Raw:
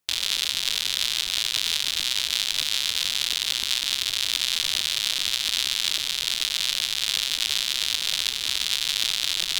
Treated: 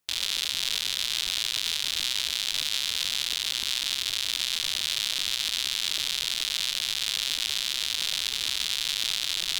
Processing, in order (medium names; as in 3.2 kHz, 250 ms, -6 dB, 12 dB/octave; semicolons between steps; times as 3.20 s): peak limiter -9.5 dBFS, peak gain reduction 5.5 dB